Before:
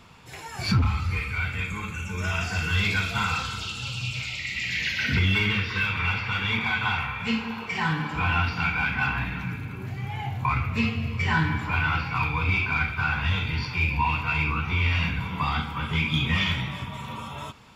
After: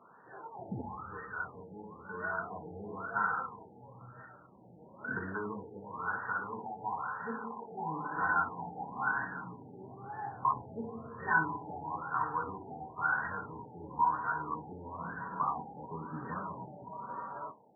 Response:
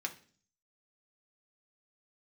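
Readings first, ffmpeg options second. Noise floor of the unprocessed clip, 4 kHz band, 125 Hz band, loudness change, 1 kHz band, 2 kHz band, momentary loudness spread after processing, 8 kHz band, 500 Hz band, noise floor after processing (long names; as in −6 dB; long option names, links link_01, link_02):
−38 dBFS, below −40 dB, −22.0 dB, −11.0 dB, −4.0 dB, −11.0 dB, 17 LU, below −35 dB, −3.5 dB, −57 dBFS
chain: -filter_complex "[0:a]highpass=320,lowpass=2600,asplit=2[link_01][link_02];[1:a]atrim=start_sample=2205,asetrate=57330,aresample=44100[link_03];[link_02][link_03]afir=irnorm=-1:irlink=0,volume=-3dB[link_04];[link_01][link_04]amix=inputs=2:normalize=0,afftfilt=real='re*lt(b*sr/1024,890*pow(1900/890,0.5+0.5*sin(2*PI*1*pts/sr)))':imag='im*lt(b*sr/1024,890*pow(1900/890,0.5+0.5*sin(2*PI*1*pts/sr)))':win_size=1024:overlap=0.75,volume=-5.5dB"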